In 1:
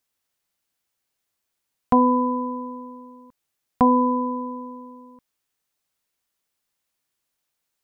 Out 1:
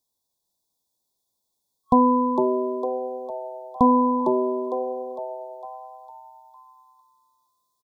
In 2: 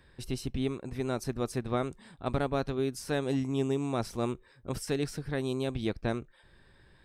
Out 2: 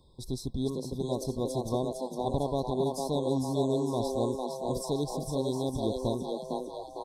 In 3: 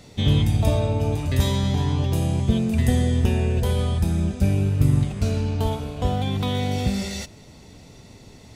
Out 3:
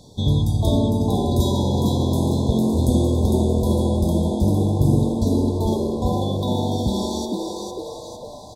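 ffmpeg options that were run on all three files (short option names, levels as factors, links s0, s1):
-filter_complex "[0:a]asplit=8[s0][s1][s2][s3][s4][s5][s6][s7];[s1]adelay=455,afreqshift=130,volume=0.631[s8];[s2]adelay=910,afreqshift=260,volume=0.327[s9];[s3]adelay=1365,afreqshift=390,volume=0.17[s10];[s4]adelay=1820,afreqshift=520,volume=0.0891[s11];[s5]adelay=2275,afreqshift=650,volume=0.0462[s12];[s6]adelay=2730,afreqshift=780,volume=0.024[s13];[s7]adelay=3185,afreqshift=910,volume=0.0124[s14];[s0][s8][s9][s10][s11][s12][s13][s14]amix=inputs=8:normalize=0,afftfilt=real='re*(1-between(b*sr/4096,1100,3300))':imag='im*(1-between(b*sr/4096,1100,3300))':win_size=4096:overlap=0.75"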